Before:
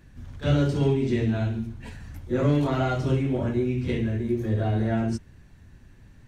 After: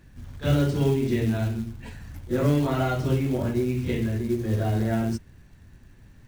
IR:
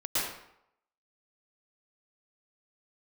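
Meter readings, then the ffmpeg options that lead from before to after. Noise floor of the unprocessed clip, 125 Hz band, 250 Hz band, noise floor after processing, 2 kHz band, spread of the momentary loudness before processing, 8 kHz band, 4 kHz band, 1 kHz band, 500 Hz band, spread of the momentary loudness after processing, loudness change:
−52 dBFS, 0.0 dB, 0.0 dB, −52 dBFS, 0.0 dB, 12 LU, can't be measured, +0.5 dB, 0.0 dB, 0.0 dB, 12 LU, 0.0 dB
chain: -af "acrusher=bits=6:mode=log:mix=0:aa=0.000001"

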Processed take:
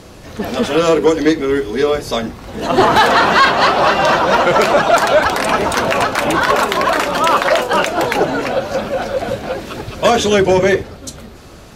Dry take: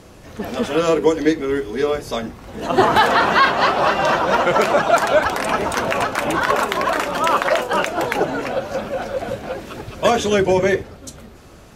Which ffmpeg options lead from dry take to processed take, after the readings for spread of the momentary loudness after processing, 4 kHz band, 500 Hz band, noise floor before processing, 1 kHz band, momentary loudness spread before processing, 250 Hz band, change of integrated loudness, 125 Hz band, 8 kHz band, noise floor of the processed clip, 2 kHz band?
12 LU, +6.0 dB, +4.5 dB, −43 dBFS, +4.0 dB, 13 LU, +4.5 dB, +4.5 dB, +4.5 dB, +5.5 dB, −37 dBFS, +4.5 dB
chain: -af "equalizer=frequency=4200:width=2:gain=3.5,acontrast=64,volume=-1dB"

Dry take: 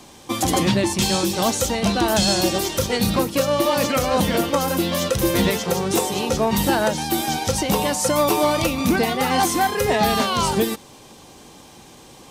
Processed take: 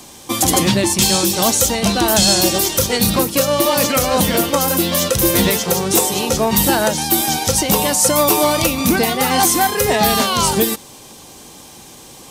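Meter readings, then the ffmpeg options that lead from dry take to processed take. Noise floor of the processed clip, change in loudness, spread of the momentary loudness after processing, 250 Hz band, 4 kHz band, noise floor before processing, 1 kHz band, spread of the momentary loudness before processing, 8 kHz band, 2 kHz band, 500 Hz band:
−40 dBFS, +5.5 dB, 3 LU, +3.0 dB, +6.0 dB, −45 dBFS, +3.0 dB, 4 LU, +9.5 dB, +4.0 dB, +3.0 dB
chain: -af "highshelf=frequency=6000:gain=10.5,volume=3dB"

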